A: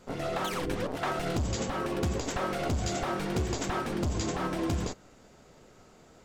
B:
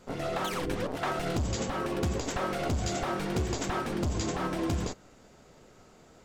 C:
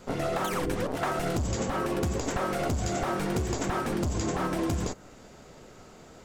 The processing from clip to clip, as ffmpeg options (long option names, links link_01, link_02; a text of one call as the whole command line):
ffmpeg -i in.wav -af anull out.wav
ffmpeg -i in.wav -filter_complex "[0:a]acrossover=split=2500|5800[link_01][link_02][link_03];[link_01]acompressor=threshold=-32dB:ratio=4[link_04];[link_02]acompressor=threshold=-57dB:ratio=4[link_05];[link_03]acompressor=threshold=-45dB:ratio=4[link_06];[link_04][link_05][link_06]amix=inputs=3:normalize=0,volume=6dB" out.wav